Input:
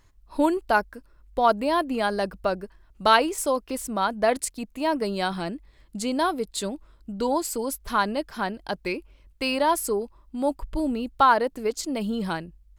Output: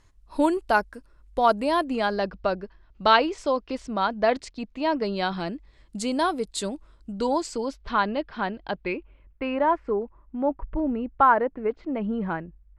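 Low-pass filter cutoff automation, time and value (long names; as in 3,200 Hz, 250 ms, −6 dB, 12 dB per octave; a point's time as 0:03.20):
low-pass filter 24 dB per octave
0:01.77 11,000 Hz
0:02.20 5,100 Hz
0:05.32 5,100 Hz
0:05.97 10,000 Hz
0:07.10 10,000 Hz
0:07.98 3,800 Hz
0:08.68 3,800 Hz
0:09.48 2,100 Hz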